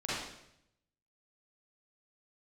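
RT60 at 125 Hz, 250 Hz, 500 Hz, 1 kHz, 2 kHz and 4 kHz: 1.1 s, 0.90 s, 0.80 s, 0.70 s, 0.75 s, 0.75 s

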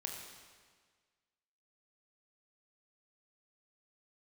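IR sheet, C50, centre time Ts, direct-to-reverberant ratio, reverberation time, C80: 2.5 dB, 63 ms, 0.5 dB, 1.6 s, 4.0 dB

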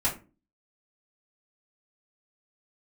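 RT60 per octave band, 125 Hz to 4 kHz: 0.45 s, 0.50 s, 0.35 s, 0.30 s, 0.25 s, 0.20 s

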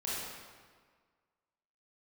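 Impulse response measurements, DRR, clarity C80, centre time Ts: -8.5 dB, -0.5 dB, 119 ms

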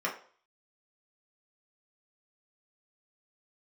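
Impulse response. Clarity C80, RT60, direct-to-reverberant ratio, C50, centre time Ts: 14.5 dB, 0.45 s, -3.5 dB, 9.5 dB, 20 ms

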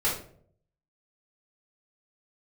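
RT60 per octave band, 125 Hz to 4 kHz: 0.90 s, 0.70 s, 0.70 s, 0.45 s, 0.40 s, 0.35 s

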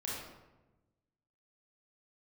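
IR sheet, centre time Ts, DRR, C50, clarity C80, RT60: 77 ms, -6.0 dB, -1.0 dB, 2.5 dB, 1.1 s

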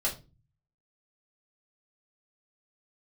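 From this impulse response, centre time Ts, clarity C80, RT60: 17 ms, 18.0 dB, 0.30 s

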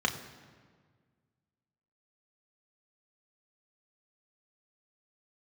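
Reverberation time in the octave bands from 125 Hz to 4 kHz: 2.3 s, 2.1 s, 1.7 s, 1.6 s, 1.4 s, 1.2 s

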